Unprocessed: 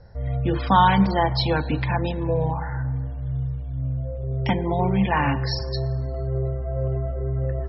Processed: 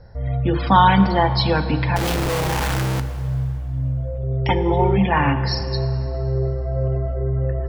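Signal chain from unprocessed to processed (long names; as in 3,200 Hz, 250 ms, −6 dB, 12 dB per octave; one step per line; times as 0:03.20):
0:01.96–0:03.00: sign of each sample alone
0:04.48–0:04.98: comb filter 2.3 ms, depth 78%
dense smooth reverb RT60 2.6 s, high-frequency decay 0.85×, pre-delay 0 ms, DRR 11 dB
level +3 dB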